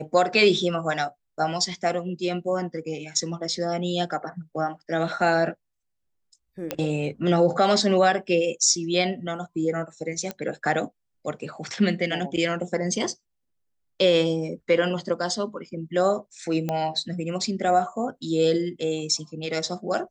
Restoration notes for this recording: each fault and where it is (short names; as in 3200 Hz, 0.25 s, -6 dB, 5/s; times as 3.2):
6.71 pop -11 dBFS
10.31 pop -15 dBFS
16.69 pop -14 dBFS